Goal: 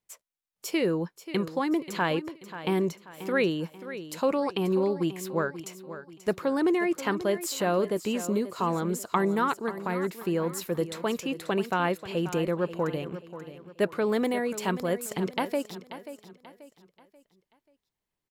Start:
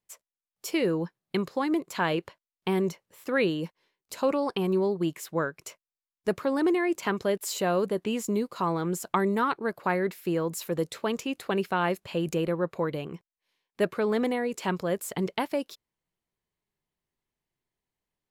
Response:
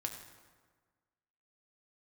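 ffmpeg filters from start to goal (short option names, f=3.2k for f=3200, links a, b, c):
-filter_complex "[0:a]asettb=1/sr,asplit=3[a][b][c];[a]atrim=end=9.604[d];[b]atrim=start=9.6:end=10.2,asetpts=PTS-STARTPTS,afade=t=in:d=0.004:c=qsin,afade=t=out:st=0.596:d=0.004:c=qsin,acrossover=split=370|3000[e][f][g];[f]acompressor=threshold=-33dB:ratio=2.5[h];[e][h][g]amix=inputs=3:normalize=0[i];[c]atrim=start=10.196[j];[d][i]acrossfade=d=0.004:c1=hsin:c2=qsin[k];[k][j]acrossfade=d=0.004:c1=qsin:c2=hsin,asettb=1/sr,asplit=3[l][m][n];[l]atrim=end=14.054[o];[m]atrim=start=14.05:end=14.94,asetpts=PTS-STARTPTS,afade=t=in:d=0.004:c=qsin,afade=t=out:st=0.886:d=0.004:c=qsin,highshelf=f=7.5k:g=7.5[p];[n]atrim=start=14.936[q];[o][p]acrossfade=d=0.004:c1=hsin:c2=qsin[r];[r][q]acrossfade=d=0.004:c1=qsin:c2=hsin,asplit=2[s][t];[t]aecho=0:1:535|1070|1605|2140:0.224|0.0851|0.0323|0.0123[u];[s][u]amix=inputs=2:normalize=0"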